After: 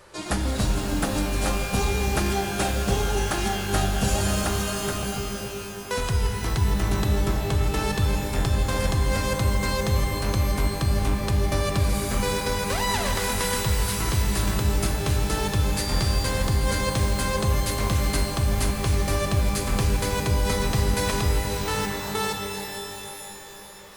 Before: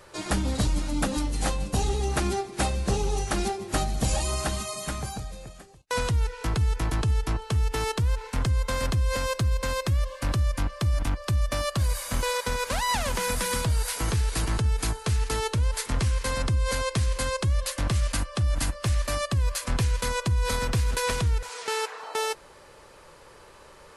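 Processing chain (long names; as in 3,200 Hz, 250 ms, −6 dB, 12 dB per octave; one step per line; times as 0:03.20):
0:15.76–0:16.28: steady tone 4,700 Hz −33 dBFS
reverb with rising layers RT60 3.1 s, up +12 semitones, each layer −2 dB, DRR 4.5 dB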